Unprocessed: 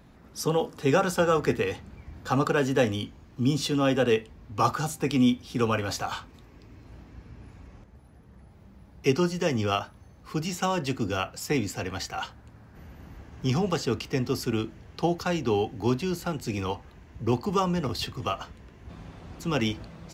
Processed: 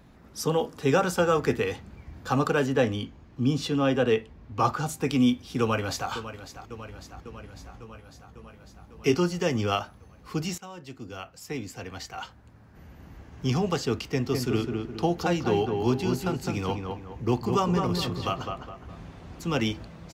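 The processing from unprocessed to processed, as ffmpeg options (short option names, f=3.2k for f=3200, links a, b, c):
-filter_complex "[0:a]asettb=1/sr,asplit=3[a][b][c];[a]atrim=end=2.664[d];[b]atrim=start=2.66:end=4.89,asetpts=PTS-STARTPTS,afade=t=in:d=0.004:c=qsin,afade=t=out:st=2.226:d=0.004:c=qsin,highshelf=f=5.7k:g=-9.5[e];[c]atrim=start=4.886[f];[d][e]acrossfade=d=0.004:c1=hsin:c2=qsin[g];[g][f]acrossfade=d=0.004:c1=qsin:c2=hsin,asplit=2[h][i];[i]afade=t=in:st=5.6:d=0.01,afade=t=out:st=6.1:d=0.01,aecho=0:1:550|1100|1650|2200|2750|3300|3850|4400|4950:0.237137|0.165996|0.116197|0.0813381|0.0569367|0.0398557|0.027899|0.0195293|0.0136705[j];[h][j]amix=inputs=2:normalize=0,asettb=1/sr,asplit=3[k][l][m];[k]atrim=end=7.544[n];[l]atrim=start=7.54:end=9.15,asetpts=PTS-STARTPTS,afade=t=in:d=0.004:c=qsin,afade=t=out:st=1.606:d=0.004:c=qsin,asplit=2[o][p];[p]adelay=18,volume=-7dB[q];[o][q]amix=inputs=2:normalize=0,atrim=end_sample=71001[r];[m]atrim=start=9.146[s];[n][r]acrossfade=d=0.004:c1=hsin:c2=qsin[t];[t][s]acrossfade=d=0.004:c1=qsin:c2=hsin,asettb=1/sr,asplit=3[u][v][w];[u]atrim=end=14.094[x];[v]atrim=start=14.09:end=19.06,asetpts=PTS-STARTPTS,afade=t=in:d=0.004:c=qsin,afade=t=out:st=4.966:d=0.004:c=qsin,asplit=2[y][z];[z]adelay=207,lowpass=f=2k:p=1,volume=-4dB,asplit=2[aa][ab];[ab]adelay=207,lowpass=f=2k:p=1,volume=0.41,asplit=2[ac][ad];[ad]adelay=207,lowpass=f=2k:p=1,volume=0.41,asplit=2[ae][af];[af]adelay=207,lowpass=f=2k:p=1,volume=0.41,asplit=2[ag][ah];[ah]adelay=207,lowpass=f=2k:p=1,volume=0.41[ai];[y][aa][ac][ae][ag][ai]amix=inputs=6:normalize=0,atrim=end_sample=219177[aj];[w]atrim=start=19.056[ak];[x][aj]acrossfade=d=0.004:c1=hsin:c2=qsin[al];[al][ak]acrossfade=d=0.004:c1=qsin:c2=hsin,asplit=2[am][an];[am]atrim=end=10.58,asetpts=PTS-STARTPTS,afade=t=out:st=10.576:d=0.004:c=hsin:silence=0.125893[ao];[an]atrim=start=10.58,asetpts=PTS-STARTPTS,afade=t=in:d=2.97:silence=0.125893[ap];[ao][ap]concat=n=2:v=0:a=1"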